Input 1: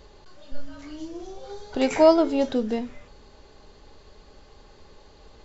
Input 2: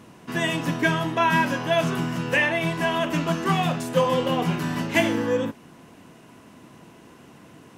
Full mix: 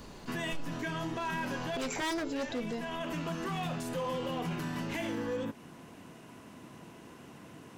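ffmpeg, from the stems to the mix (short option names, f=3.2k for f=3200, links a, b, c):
-filter_complex "[0:a]aemphasis=mode=production:type=50fm,volume=-2.5dB,asplit=2[a][b];[1:a]alimiter=limit=-16dB:level=0:latency=1:release=22,volume=-2.5dB[c];[b]apad=whole_len=343077[d];[c][d]sidechaincompress=threshold=-29dB:ratio=8:attack=5.9:release=744[e];[a][e]amix=inputs=2:normalize=0,aeval=exprs='0.1*(abs(mod(val(0)/0.1+3,4)-2)-1)':c=same,alimiter=level_in=4dB:limit=-24dB:level=0:latency=1:release=154,volume=-4dB"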